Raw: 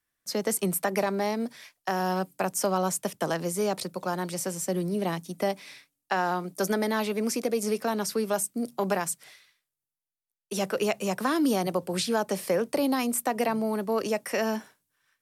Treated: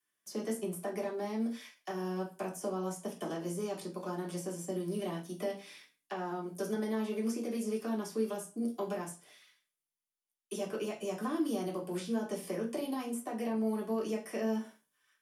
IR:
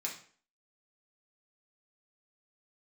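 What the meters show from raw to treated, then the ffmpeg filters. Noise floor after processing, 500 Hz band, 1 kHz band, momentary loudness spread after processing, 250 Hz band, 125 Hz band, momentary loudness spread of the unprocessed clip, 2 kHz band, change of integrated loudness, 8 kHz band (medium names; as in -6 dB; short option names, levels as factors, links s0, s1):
under -85 dBFS, -8.0 dB, -12.5 dB, 6 LU, -5.5 dB, -7.5 dB, 6 LU, -13.5 dB, -8.5 dB, -14.0 dB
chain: -filter_complex "[0:a]acrossover=split=340|910[s0][s1][s2];[s0]acompressor=threshold=0.0251:ratio=4[s3];[s1]acompressor=threshold=0.0158:ratio=4[s4];[s2]acompressor=threshold=0.00501:ratio=4[s5];[s3][s4][s5]amix=inputs=3:normalize=0[s6];[1:a]atrim=start_sample=2205,asetrate=61740,aresample=44100[s7];[s6][s7]afir=irnorm=-1:irlink=0"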